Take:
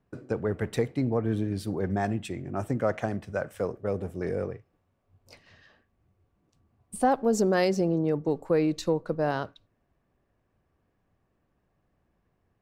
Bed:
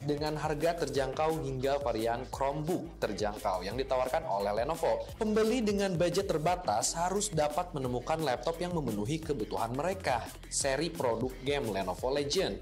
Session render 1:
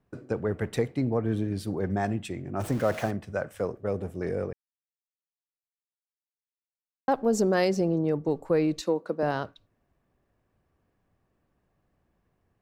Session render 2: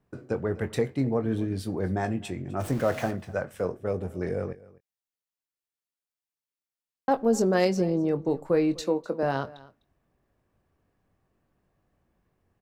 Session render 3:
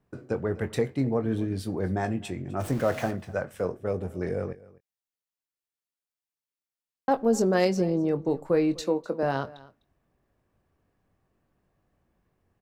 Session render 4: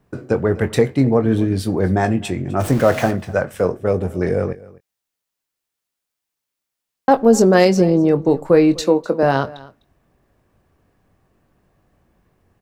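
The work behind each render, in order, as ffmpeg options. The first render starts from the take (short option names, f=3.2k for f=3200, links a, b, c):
-filter_complex "[0:a]asettb=1/sr,asplit=3[a][b][c];[a]atrim=end=2.604[d];[b]atrim=start=2.6:end=3.11,asetpts=PTS-STARTPTS,afade=t=in:d=0.004:c=qsin,afade=t=out:st=0.506:d=0.004:c=qsin,aeval=exprs='val(0)+0.5*0.0168*sgn(val(0))':c=same[e];[c]atrim=start=3.106[f];[d][e]acrossfade=d=0.004:c1=hsin:c2=qsin[g];[g][f]acrossfade=d=0.004:c1=qsin:c2=hsin,asettb=1/sr,asplit=3[h][i][j];[h]atrim=end=8.814[k];[i]atrim=start=8.81:end=9.23,asetpts=PTS-STARTPTS,afade=t=in:d=0.004:c=qsin,afade=t=out:st=0.416:d=0.004:c=qsin,highpass=f=200:w=0.5412,highpass=f=200:w=1.3066[l];[j]atrim=start=9.226[m];[k][l]acrossfade=d=0.004:c1=hsin:c2=qsin[n];[n][m]acrossfade=d=0.004:c1=qsin:c2=hsin,asplit=3[o][p][q];[o]atrim=end=4.53,asetpts=PTS-STARTPTS,afade=t=out:st=4.526:d=0.004:c=hsin[r];[p]atrim=start=4.53:end=7.08,asetpts=PTS-STARTPTS,volume=0[s];[q]atrim=start=7.08,asetpts=PTS-STARTPTS,afade=t=in:d=0.004:c=hsin[t];[r][s][t]concat=n=3:v=0:a=1"
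-filter_complex "[0:a]asplit=2[a][b];[b]adelay=22,volume=-10dB[c];[a][c]amix=inputs=2:normalize=0,aecho=1:1:253:0.0891"
-af anull
-af "volume=11dB,alimiter=limit=-1dB:level=0:latency=1"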